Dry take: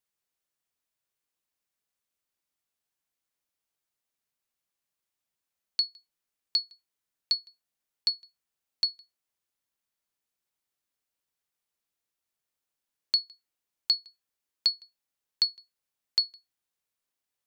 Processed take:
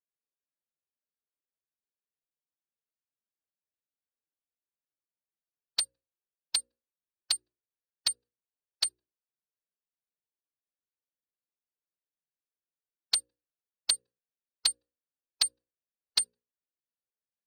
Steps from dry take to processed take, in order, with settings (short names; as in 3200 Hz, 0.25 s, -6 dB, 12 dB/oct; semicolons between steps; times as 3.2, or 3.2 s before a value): Wiener smoothing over 41 samples; formant-preserving pitch shift +12 st; low shelf 400 Hz -10 dB; notches 60/120/180/240/300/360/420/480/540 Hz